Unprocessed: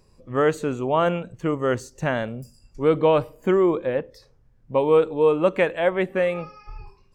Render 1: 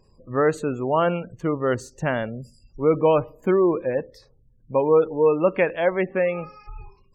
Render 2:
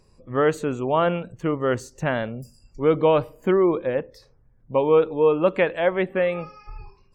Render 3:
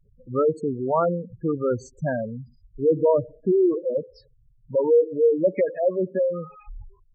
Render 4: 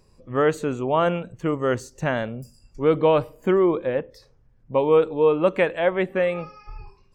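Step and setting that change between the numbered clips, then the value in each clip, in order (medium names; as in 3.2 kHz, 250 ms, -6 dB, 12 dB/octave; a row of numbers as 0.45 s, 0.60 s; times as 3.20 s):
spectral gate, under each frame's peak: -30 dB, -45 dB, -10 dB, -55 dB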